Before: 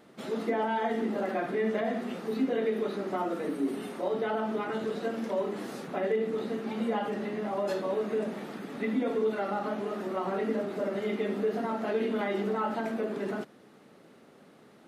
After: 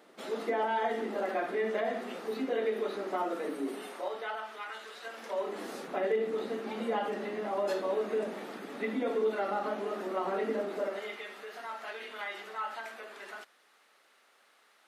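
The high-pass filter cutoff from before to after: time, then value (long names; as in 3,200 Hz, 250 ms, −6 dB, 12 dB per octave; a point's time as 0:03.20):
0:03.67 370 Hz
0:04.51 1,300 Hz
0:05.01 1,300 Hz
0:05.65 310 Hz
0:10.72 310 Hz
0:11.25 1,200 Hz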